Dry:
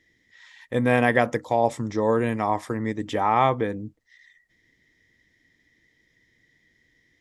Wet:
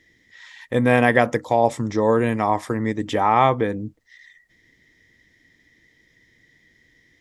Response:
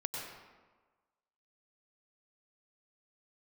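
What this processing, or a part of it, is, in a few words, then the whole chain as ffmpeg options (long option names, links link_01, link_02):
parallel compression: -filter_complex "[0:a]asplit=2[link_01][link_02];[link_02]acompressor=threshold=-35dB:ratio=6,volume=-7.5dB[link_03];[link_01][link_03]amix=inputs=2:normalize=0,volume=3dB"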